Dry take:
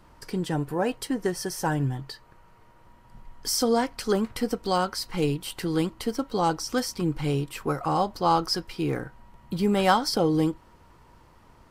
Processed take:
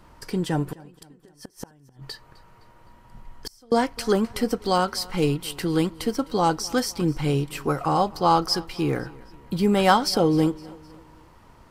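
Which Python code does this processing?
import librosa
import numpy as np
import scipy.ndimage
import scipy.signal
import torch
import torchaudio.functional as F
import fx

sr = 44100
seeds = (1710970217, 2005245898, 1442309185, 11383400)

y = fx.gate_flip(x, sr, shuts_db=-22.0, range_db=-32, at=(0.72, 3.72))
y = fx.echo_feedback(y, sr, ms=257, feedback_pct=47, wet_db=-22.0)
y = y * 10.0 ** (3.0 / 20.0)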